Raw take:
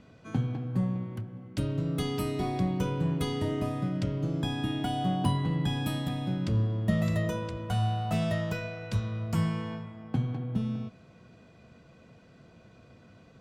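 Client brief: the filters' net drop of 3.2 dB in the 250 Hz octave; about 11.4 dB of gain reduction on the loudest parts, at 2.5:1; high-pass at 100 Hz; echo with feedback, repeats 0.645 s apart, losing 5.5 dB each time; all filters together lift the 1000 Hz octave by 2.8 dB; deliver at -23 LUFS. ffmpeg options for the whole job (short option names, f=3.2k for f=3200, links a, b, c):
-af "highpass=100,equalizer=f=250:t=o:g=-4.5,equalizer=f=1k:t=o:g=4.5,acompressor=threshold=-42dB:ratio=2.5,aecho=1:1:645|1290|1935|2580|3225|3870|4515:0.531|0.281|0.149|0.079|0.0419|0.0222|0.0118,volume=17.5dB"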